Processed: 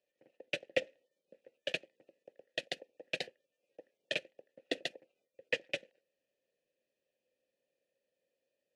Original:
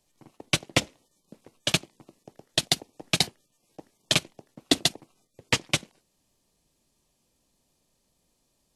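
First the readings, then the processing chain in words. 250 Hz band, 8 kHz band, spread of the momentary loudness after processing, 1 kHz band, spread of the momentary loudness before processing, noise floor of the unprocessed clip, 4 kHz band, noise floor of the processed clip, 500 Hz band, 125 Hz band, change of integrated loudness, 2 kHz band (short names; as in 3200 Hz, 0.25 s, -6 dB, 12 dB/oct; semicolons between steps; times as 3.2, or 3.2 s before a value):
-18.0 dB, -26.0 dB, 8 LU, -18.0 dB, 5 LU, -73 dBFS, -16.0 dB, under -85 dBFS, -5.0 dB, -25.5 dB, -13.0 dB, -8.5 dB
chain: vowel filter e; gain +1.5 dB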